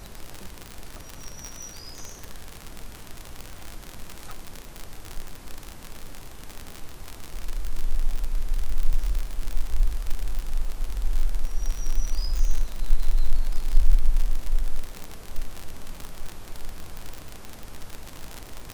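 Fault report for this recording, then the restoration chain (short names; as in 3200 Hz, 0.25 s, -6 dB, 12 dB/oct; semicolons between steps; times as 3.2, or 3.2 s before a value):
crackle 58/s -24 dBFS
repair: de-click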